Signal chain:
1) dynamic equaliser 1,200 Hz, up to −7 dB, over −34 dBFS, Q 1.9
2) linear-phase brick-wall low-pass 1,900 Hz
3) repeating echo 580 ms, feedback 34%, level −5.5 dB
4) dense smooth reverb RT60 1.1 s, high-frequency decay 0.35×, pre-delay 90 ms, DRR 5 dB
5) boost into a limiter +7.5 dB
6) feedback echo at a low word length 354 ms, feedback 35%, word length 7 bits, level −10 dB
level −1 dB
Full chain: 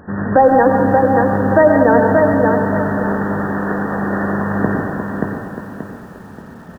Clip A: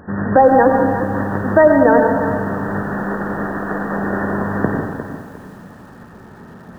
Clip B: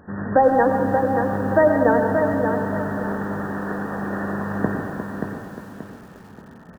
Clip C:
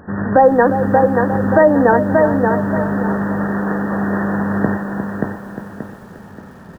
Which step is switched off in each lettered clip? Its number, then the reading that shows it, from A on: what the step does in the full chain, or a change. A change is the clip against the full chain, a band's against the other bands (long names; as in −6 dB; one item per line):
3, change in momentary loudness spread −4 LU
5, change in crest factor +3.5 dB
4, change in momentary loudness spread −2 LU